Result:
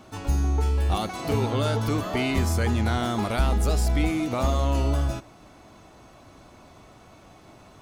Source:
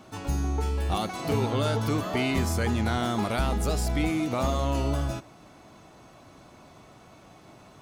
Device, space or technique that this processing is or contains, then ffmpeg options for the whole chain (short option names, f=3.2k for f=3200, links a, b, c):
low shelf boost with a cut just above: -af "lowshelf=f=78:g=8,equalizer=f=150:t=o:w=0.64:g=-4,volume=1dB"